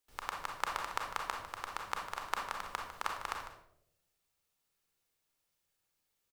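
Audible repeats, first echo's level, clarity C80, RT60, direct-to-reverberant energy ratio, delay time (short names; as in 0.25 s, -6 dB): 1, -12.0 dB, 7.0 dB, 0.75 s, 1.0 dB, 0.151 s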